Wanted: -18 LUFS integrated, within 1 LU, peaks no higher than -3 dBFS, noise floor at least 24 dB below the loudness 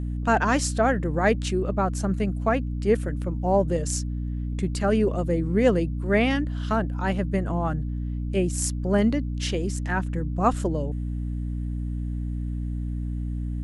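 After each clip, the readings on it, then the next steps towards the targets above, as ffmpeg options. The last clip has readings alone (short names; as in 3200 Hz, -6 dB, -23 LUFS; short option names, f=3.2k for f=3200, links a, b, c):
hum 60 Hz; harmonics up to 300 Hz; hum level -26 dBFS; loudness -25.5 LUFS; peak -7.5 dBFS; loudness target -18.0 LUFS
-> -af "bandreject=f=60:t=h:w=4,bandreject=f=120:t=h:w=4,bandreject=f=180:t=h:w=4,bandreject=f=240:t=h:w=4,bandreject=f=300:t=h:w=4"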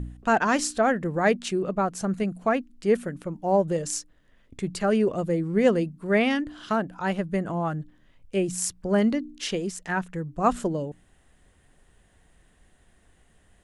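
hum none; loudness -26.0 LUFS; peak -8.5 dBFS; loudness target -18.0 LUFS
-> -af "volume=8dB,alimiter=limit=-3dB:level=0:latency=1"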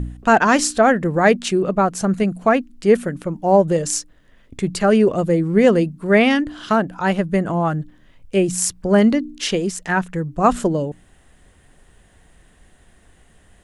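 loudness -18.0 LUFS; peak -3.0 dBFS; noise floor -53 dBFS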